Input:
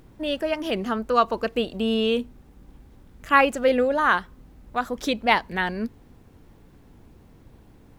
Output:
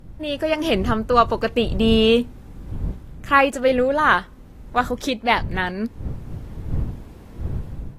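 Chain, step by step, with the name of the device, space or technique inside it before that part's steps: smartphone video outdoors (wind noise 98 Hz -36 dBFS; level rider gain up to 10 dB; trim -1 dB; AAC 48 kbps 32 kHz)

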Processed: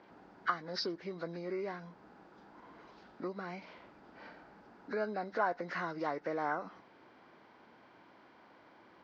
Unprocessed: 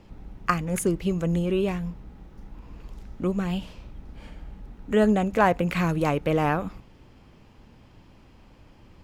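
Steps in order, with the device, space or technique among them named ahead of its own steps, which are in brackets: hearing aid with frequency lowering (knee-point frequency compression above 1.3 kHz 1.5:1; compression 2.5:1, threshold -34 dBFS, peak gain reduction 13 dB; cabinet simulation 320–6000 Hz, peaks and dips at 340 Hz +3 dB, 690 Hz +5 dB, 1 kHz +5 dB, 1.5 kHz +9 dB, 4.7 kHz +9 dB); trim -4 dB

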